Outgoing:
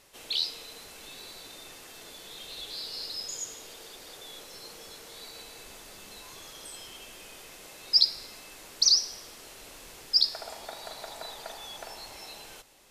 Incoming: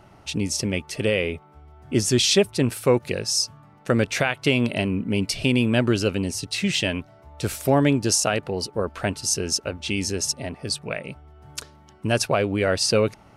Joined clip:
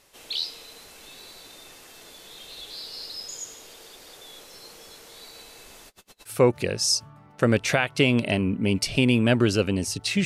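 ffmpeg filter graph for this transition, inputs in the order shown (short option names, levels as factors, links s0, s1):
-filter_complex "[0:a]asettb=1/sr,asplit=3[s0][s1][s2];[s0]atrim=end=5.884[s3];[s1]atrim=start=5.88:end=6.33,asetpts=PTS-STARTPTS,afade=t=in:d=0.004:c=qsin,afade=t=out:st=0.446:d=0.004:c=qsin,aeval=exprs='val(0)*pow(10,-33*(0.5-0.5*cos(2*PI*8.9*n/s))/20)':c=same[s4];[s2]atrim=start=6.326[s5];[s3][s4]acrossfade=d=0.004:c1=hsin:c2=qsin[s6];[s6][s5]acrossfade=d=0.004:c1=qsin:c2=hsin,apad=whole_dur=10.25,atrim=end=10.25,atrim=end=6.33,asetpts=PTS-STARTPTS[s7];[1:a]atrim=start=2.72:end=6.72,asetpts=PTS-STARTPTS[s8];[s7][s8]acrossfade=d=0.08:c1=tri:c2=tri"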